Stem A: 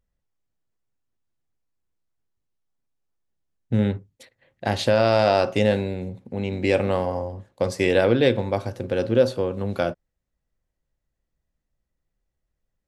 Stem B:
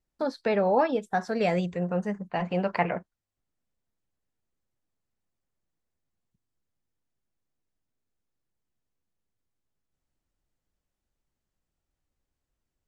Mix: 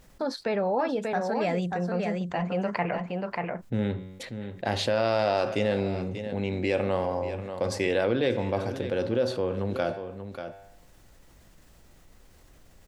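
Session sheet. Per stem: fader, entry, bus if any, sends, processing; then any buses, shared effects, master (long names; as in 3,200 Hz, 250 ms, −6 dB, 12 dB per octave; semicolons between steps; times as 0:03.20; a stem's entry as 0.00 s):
−3.5 dB, 0.00 s, no send, echo send −18.5 dB, low-shelf EQ 160 Hz −6.5 dB; flanger 0.38 Hz, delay 9.7 ms, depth 1.1 ms, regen +89%; high-shelf EQ 8,200 Hz −8 dB
−7.0 dB, 0.00 s, no send, echo send −6.5 dB, no processing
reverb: not used
echo: single-tap delay 587 ms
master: envelope flattener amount 50%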